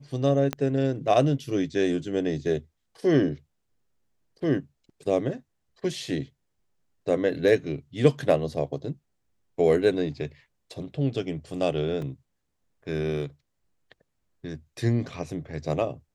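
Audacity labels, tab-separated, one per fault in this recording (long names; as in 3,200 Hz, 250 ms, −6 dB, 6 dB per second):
0.530000	0.530000	click −13 dBFS
12.020000	12.020000	drop-out 3 ms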